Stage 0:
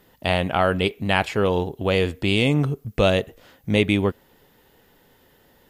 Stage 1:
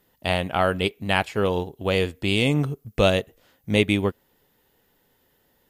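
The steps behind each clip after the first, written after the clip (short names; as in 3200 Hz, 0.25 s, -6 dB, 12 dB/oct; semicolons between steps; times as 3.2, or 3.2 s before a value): high shelf 6100 Hz +6 dB; upward expander 1.5:1, over -34 dBFS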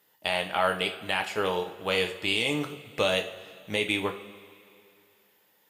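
HPF 830 Hz 6 dB/oct; limiter -12.5 dBFS, peak gain reduction 7.5 dB; two-slope reverb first 0.39 s, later 2.6 s, from -17 dB, DRR 3.5 dB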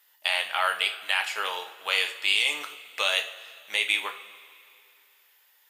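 HPF 1200 Hz 12 dB/oct; gain +4.5 dB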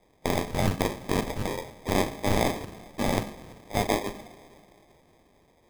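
sample-and-hold 31×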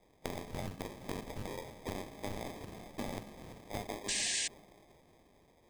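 bell 1400 Hz -2 dB; compressor 8:1, threshold -33 dBFS, peak gain reduction 15.5 dB; painted sound noise, 4.08–4.48, 1600–9200 Hz -31 dBFS; gain -3.5 dB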